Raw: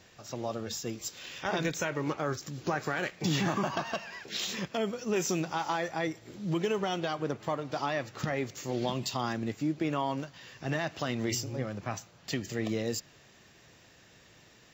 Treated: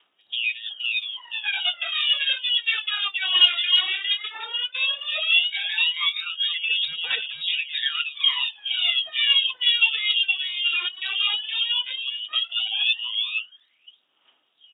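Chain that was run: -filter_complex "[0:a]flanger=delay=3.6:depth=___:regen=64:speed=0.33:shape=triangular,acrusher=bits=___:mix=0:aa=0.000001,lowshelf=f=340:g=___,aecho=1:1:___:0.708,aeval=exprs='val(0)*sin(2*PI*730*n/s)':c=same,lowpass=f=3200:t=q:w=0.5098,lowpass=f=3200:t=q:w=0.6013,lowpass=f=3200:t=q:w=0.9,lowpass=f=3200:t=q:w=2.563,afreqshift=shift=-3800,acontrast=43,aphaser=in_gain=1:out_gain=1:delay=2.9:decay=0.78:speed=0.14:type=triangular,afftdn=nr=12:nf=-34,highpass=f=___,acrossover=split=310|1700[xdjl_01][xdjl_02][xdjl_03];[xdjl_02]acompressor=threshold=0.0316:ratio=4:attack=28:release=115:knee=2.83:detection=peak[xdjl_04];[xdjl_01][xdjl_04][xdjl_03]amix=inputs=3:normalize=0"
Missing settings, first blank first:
5.1, 10, 9, 470, 240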